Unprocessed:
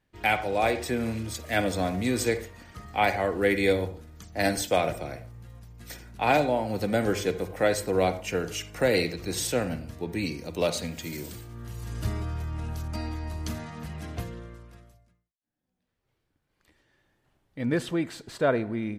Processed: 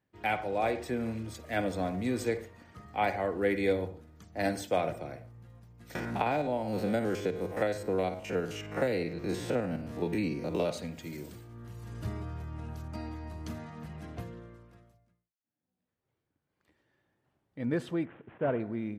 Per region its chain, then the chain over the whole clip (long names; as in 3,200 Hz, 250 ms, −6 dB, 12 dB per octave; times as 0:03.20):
0:05.95–0:10.71: spectrum averaged block by block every 50 ms + multiband upward and downward compressor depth 100%
0:18.05–0:18.60: variable-slope delta modulation 16 kbit/s + high-frequency loss of the air 250 metres
whole clip: high-pass filter 88 Hz; high-shelf EQ 2,400 Hz −9 dB; level −4 dB